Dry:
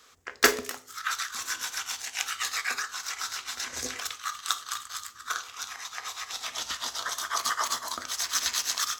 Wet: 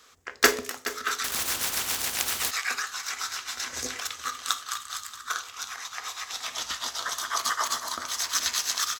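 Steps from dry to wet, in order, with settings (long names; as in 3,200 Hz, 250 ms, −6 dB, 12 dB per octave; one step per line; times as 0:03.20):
multi-tap delay 422/629 ms −13/−19.5 dB
0:01.24–0:02.51: every bin compressed towards the loudest bin 4 to 1
level +1 dB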